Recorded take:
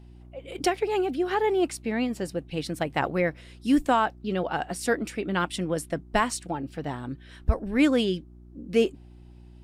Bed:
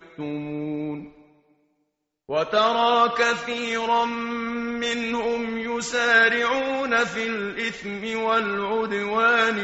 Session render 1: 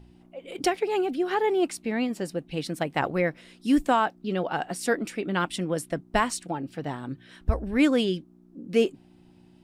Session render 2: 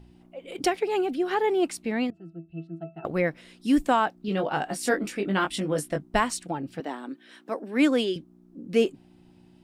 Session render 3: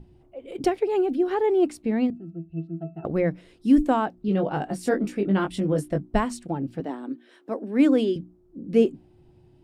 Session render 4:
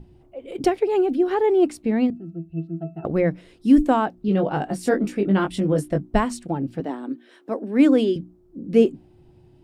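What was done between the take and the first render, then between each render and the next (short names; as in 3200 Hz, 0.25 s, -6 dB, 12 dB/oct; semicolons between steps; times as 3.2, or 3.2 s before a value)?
de-hum 60 Hz, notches 2
2.1–3.05 octave resonator E, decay 0.22 s; 4.26–6.08 doubler 20 ms -4 dB; 6.8–8.16 steep high-pass 230 Hz
tilt shelf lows +7.5 dB, about 650 Hz; notches 60/120/180/240/300 Hz
gain +3 dB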